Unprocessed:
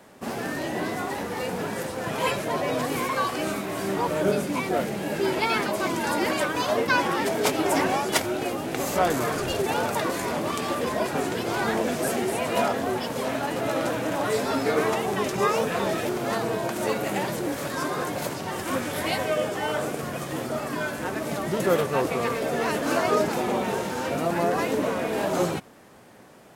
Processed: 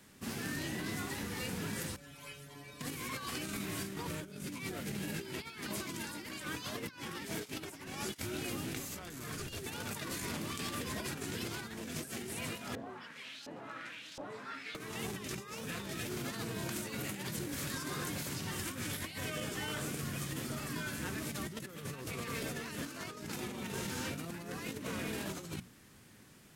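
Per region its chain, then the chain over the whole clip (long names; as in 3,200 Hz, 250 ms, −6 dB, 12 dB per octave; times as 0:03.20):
0:01.96–0:02.81: ring modulation 47 Hz + stiff-string resonator 140 Hz, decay 0.32 s, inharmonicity 0.002
0:12.75–0:14.75: parametric band 160 Hz +8 dB 2.4 octaves + auto-filter band-pass saw up 1.4 Hz 550–5,100 Hz
whole clip: guitar amp tone stack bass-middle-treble 6-0-2; mains-hum notches 60/120/180/240 Hz; compressor whose output falls as the input rises −50 dBFS, ratio −0.5; level +10 dB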